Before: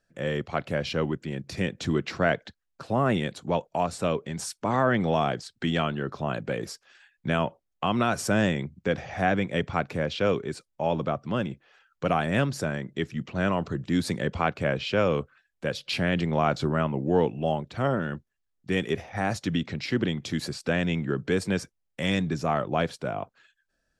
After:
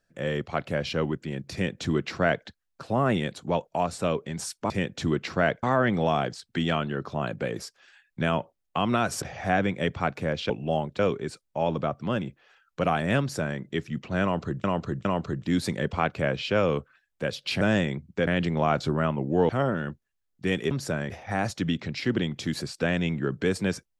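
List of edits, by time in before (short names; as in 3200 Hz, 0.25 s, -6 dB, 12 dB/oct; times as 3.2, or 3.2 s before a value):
1.53–2.46 copy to 4.7
8.29–8.95 move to 16.03
12.44–12.83 copy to 18.96
13.47–13.88 loop, 3 plays
17.25–17.74 move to 10.23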